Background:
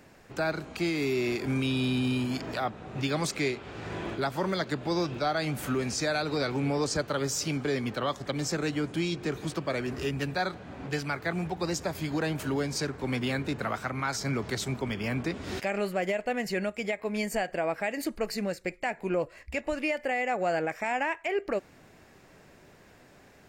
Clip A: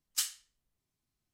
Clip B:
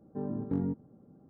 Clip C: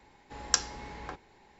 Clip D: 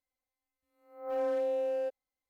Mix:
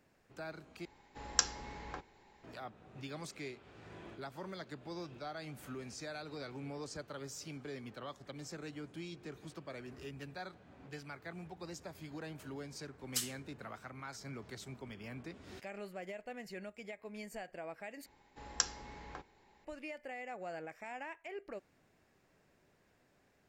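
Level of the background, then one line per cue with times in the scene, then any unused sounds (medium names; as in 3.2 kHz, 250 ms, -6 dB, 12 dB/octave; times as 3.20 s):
background -16 dB
0.85 s: replace with C -4 dB
12.98 s: add A -4.5 dB
18.06 s: replace with C -7 dB
not used: B, D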